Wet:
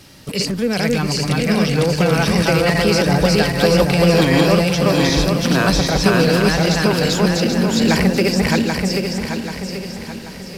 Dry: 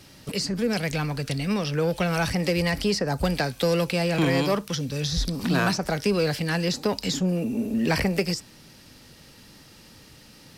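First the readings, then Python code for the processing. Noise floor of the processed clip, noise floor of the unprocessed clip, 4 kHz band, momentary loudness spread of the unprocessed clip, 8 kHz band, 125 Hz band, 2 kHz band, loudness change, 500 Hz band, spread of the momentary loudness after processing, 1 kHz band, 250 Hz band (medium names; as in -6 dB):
-32 dBFS, -51 dBFS, +9.5 dB, 5 LU, +9.5 dB, +9.5 dB, +9.5 dB, +9.0 dB, +9.5 dB, 11 LU, +9.5 dB, +10.0 dB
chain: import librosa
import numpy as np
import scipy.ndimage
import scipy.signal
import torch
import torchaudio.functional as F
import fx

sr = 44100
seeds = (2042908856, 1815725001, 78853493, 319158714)

y = fx.reverse_delay_fb(x, sr, ms=392, feedback_pct=64, wet_db=-0.5)
y = fx.echo_diffused(y, sr, ms=737, feedback_pct=46, wet_db=-15.0)
y = y * librosa.db_to_amplitude(5.5)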